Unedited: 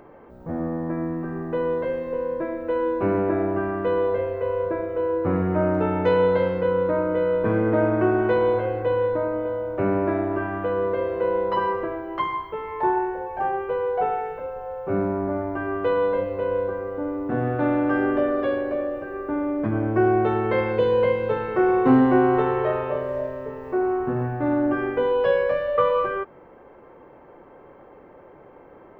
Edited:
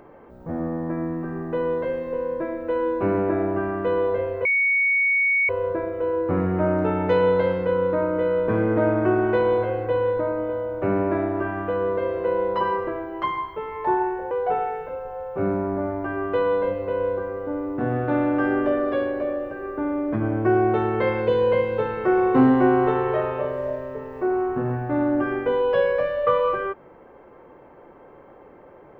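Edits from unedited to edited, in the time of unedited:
0:04.45: insert tone 2,230 Hz −17 dBFS 1.04 s
0:13.27–0:13.82: remove

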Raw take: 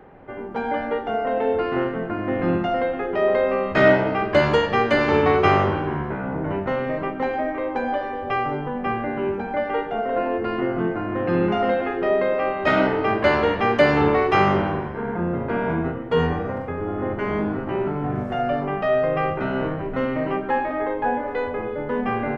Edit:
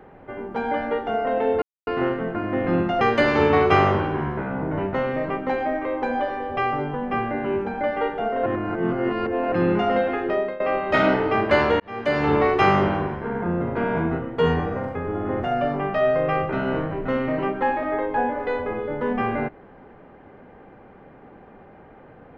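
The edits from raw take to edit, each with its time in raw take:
0:01.62: splice in silence 0.25 s
0:02.76–0:04.74: remove
0:10.19–0:11.25: reverse
0:12.00–0:12.33: fade out, to −18 dB
0:13.53–0:14.14: fade in
0:17.16–0:18.31: remove

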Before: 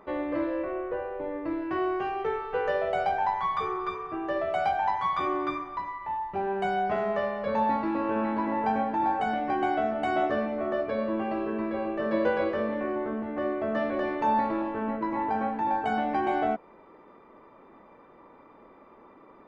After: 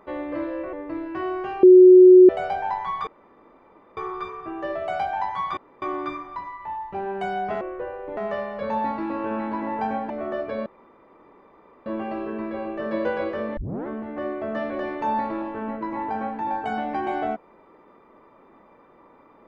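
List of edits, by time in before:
0:00.73–0:01.29: move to 0:07.02
0:02.19–0:02.85: beep over 367 Hz −6 dBFS
0:03.63: splice in room tone 0.90 s
0:05.23: splice in room tone 0.25 s
0:08.95–0:10.50: remove
0:11.06: splice in room tone 1.20 s
0:12.77: tape start 0.30 s

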